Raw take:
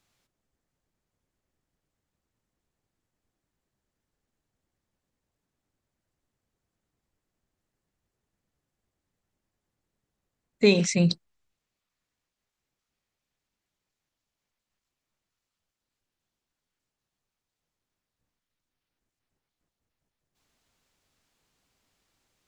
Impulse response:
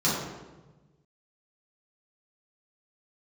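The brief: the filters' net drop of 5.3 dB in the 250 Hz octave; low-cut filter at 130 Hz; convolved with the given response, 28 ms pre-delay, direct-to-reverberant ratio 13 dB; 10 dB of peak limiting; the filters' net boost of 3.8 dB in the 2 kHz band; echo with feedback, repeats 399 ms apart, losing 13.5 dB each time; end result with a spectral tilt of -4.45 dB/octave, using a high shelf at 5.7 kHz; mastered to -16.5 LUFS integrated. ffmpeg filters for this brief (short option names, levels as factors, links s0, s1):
-filter_complex "[0:a]highpass=130,equalizer=f=250:t=o:g=-7.5,equalizer=f=2000:t=o:g=6,highshelf=f=5700:g=-4,alimiter=limit=0.126:level=0:latency=1,aecho=1:1:399|798:0.211|0.0444,asplit=2[s0][s1];[1:a]atrim=start_sample=2205,adelay=28[s2];[s1][s2]afir=irnorm=-1:irlink=0,volume=0.0473[s3];[s0][s3]amix=inputs=2:normalize=0,volume=4.73"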